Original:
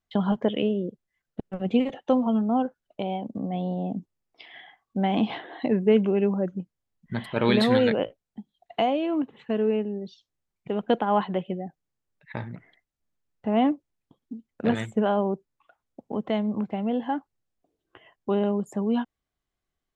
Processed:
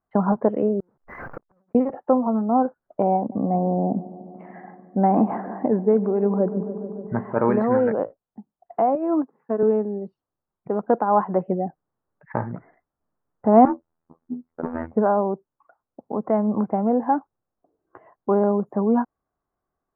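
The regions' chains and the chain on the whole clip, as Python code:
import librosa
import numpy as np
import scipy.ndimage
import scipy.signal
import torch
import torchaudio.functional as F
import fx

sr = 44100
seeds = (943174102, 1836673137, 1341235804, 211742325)

y = fx.chain(x, sr, fx.zero_step(step_db=-29.0),
    fx.over_compress(threshold_db=-29.0, ratio=-0.5),
    fx.gate_flip(shuts_db=-32.0, range_db=-38), at=(0.8, 1.75))
y = fx.chain(y, sr, fx.air_absorb(metres=270.0),
    fx.echo_filtered(ms=146, feedback_pct=81, hz=2000.0, wet_db=-17), at=(3.17, 7.33))
y = fx.chain(y, sr, fx.cheby1_bandpass(low_hz=150.0, high_hz=2700.0, order=4),
    fx.doubler(ms=12.0, db=-14.0),
    fx.upward_expand(threshold_db=-34.0, expansion=2.5), at=(8.95, 9.63))
y = fx.chain(y, sr, fx.clip_hard(threshold_db=-24.5),
    fx.robotise(hz=82.1),
    fx.over_compress(threshold_db=-32.0, ratio=-0.5), at=(13.65, 14.93))
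y = scipy.signal.sosfilt(scipy.signal.cheby2(4, 50, 3200.0, 'lowpass', fs=sr, output='sos'), y)
y = fx.tilt_eq(y, sr, slope=2.5)
y = fx.rider(y, sr, range_db=4, speed_s=0.5)
y = y * 10.0 ** (8.5 / 20.0)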